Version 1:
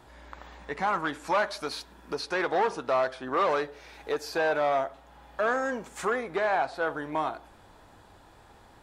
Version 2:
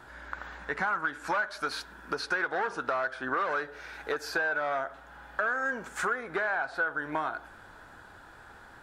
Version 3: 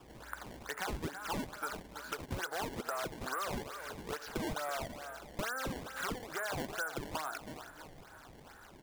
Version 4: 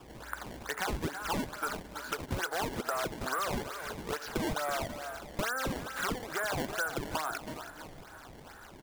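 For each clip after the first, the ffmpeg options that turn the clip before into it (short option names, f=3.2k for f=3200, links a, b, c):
-af "equalizer=f=1.5k:t=o:w=0.48:g=14.5,bandreject=f=50:t=h:w=6,bandreject=f=100:t=h:w=6,acompressor=threshold=-27dB:ratio=6"
-filter_complex "[0:a]aecho=1:1:328|656|984|1312:0.251|0.108|0.0464|0.02,acrossover=split=480|1600[a][b][c];[a]acompressor=threshold=-49dB:ratio=4[d];[b]acompressor=threshold=-32dB:ratio=4[e];[c]acompressor=threshold=-42dB:ratio=4[f];[d][e][f]amix=inputs=3:normalize=0,acrusher=samples=20:mix=1:aa=0.000001:lfo=1:lforange=32:lforate=2.3,volume=-4.5dB"
-af "aecho=1:1:325:0.133,volume=4.5dB"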